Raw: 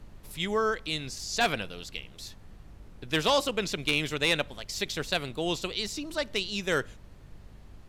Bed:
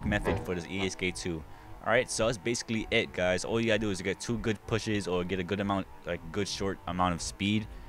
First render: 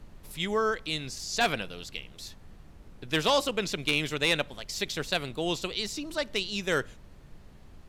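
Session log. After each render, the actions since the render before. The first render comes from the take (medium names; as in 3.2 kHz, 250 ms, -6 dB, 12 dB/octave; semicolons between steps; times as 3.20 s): de-hum 50 Hz, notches 2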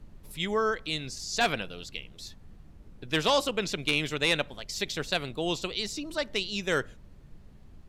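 noise reduction 6 dB, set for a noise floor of -52 dBFS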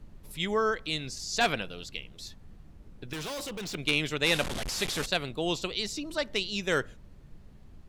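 3.13–3.75 s: overload inside the chain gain 35 dB; 4.26–5.06 s: one-bit delta coder 64 kbps, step -27.5 dBFS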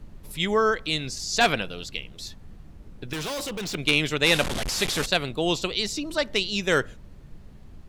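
trim +5.5 dB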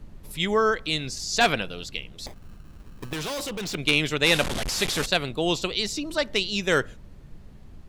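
2.26–3.13 s: sample-rate reducer 1.4 kHz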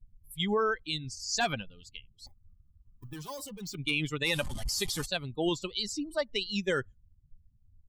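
expander on every frequency bin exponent 2; peak limiter -19.5 dBFS, peak gain reduction 7.5 dB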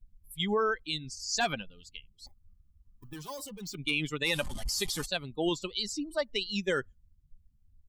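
peaking EQ 110 Hz -8.5 dB 0.58 oct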